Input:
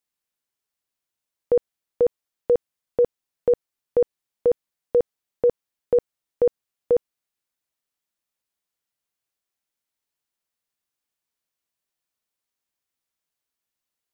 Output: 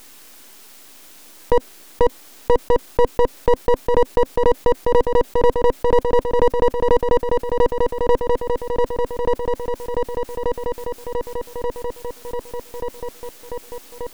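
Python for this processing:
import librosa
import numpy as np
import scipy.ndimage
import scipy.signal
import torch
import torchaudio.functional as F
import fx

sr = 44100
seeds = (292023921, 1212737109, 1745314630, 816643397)

y = fx.low_shelf_res(x, sr, hz=180.0, db=-13.0, q=3.0)
y = fx.echo_wet_bandpass(y, sr, ms=1183, feedback_pct=35, hz=450.0, wet_db=-3.0)
y = np.maximum(y, 0.0)
y = fx.env_flatten(y, sr, amount_pct=70)
y = y * 10.0 ** (5.0 / 20.0)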